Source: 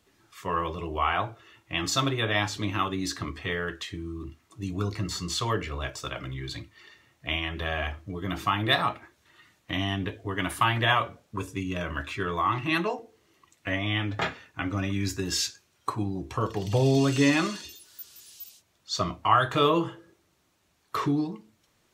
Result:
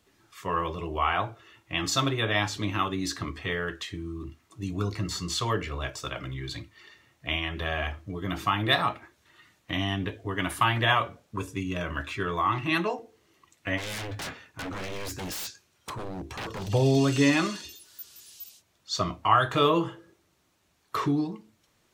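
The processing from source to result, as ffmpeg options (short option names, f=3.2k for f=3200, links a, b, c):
-filter_complex "[0:a]asplit=3[a][b][c];[a]afade=t=out:st=13.77:d=0.02[d];[b]aeval=exprs='0.0316*(abs(mod(val(0)/0.0316+3,4)-2)-1)':c=same,afade=t=in:st=13.77:d=0.02,afade=t=out:st=16.68:d=0.02[e];[c]afade=t=in:st=16.68:d=0.02[f];[d][e][f]amix=inputs=3:normalize=0"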